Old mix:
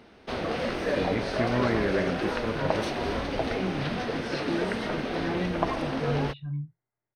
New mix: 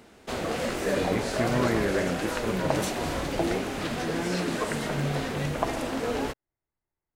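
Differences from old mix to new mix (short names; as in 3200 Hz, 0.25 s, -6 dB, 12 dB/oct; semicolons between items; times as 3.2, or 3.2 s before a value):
speech: entry -1.10 s; background: remove polynomial smoothing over 15 samples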